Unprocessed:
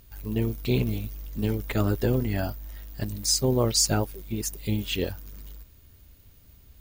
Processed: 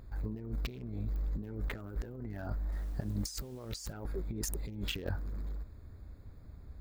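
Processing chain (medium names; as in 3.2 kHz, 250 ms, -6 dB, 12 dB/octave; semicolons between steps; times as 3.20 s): local Wiener filter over 15 samples; dynamic bell 1.5 kHz, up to +6 dB, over -51 dBFS, Q 2.1; compressor with a negative ratio -36 dBFS, ratio -1; 2.72–3.93 s: word length cut 10-bit, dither none; clicks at 1.16 s, -31 dBFS; attacks held to a fixed rise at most 450 dB/s; trim -2.5 dB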